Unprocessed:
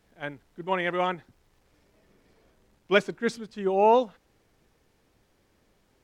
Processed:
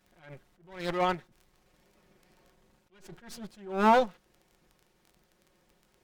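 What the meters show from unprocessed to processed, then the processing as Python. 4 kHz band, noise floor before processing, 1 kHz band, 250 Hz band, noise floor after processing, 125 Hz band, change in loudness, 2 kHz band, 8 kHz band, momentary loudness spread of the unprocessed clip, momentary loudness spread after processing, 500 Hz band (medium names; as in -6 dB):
-5.0 dB, -68 dBFS, -2.0 dB, -2.0 dB, -70 dBFS, -2.5 dB, -1.5 dB, -6.0 dB, -2.5 dB, 18 LU, 22 LU, -6.5 dB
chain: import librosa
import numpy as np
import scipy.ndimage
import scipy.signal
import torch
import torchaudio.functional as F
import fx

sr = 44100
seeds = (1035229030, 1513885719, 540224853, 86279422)

y = fx.lower_of_two(x, sr, delay_ms=5.5)
y = fx.dmg_crackle(y, sr, seeds[0], per_s=17.0, level_db=-45.0)
y = fx.attack_slew(y, sr, db_per_s=110.0)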